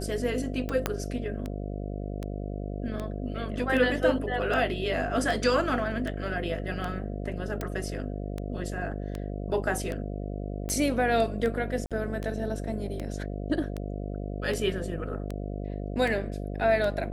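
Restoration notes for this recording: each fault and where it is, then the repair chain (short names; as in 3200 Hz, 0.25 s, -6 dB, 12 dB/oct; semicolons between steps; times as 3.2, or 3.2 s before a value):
buzz 50 Hz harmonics 14 -34 dBFS
tick 78 rpm -20 dBFS
0.86 pop -10 dBFS
7.61 pop
11.86–11.91 gap 47 ms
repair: de-click; de-hum 50 Hz, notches 14; interpolate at 11.86, 47 ms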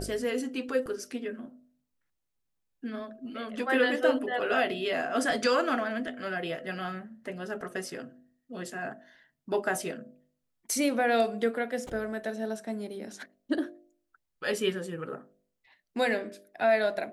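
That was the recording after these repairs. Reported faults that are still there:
0.86 pop
7.61 pop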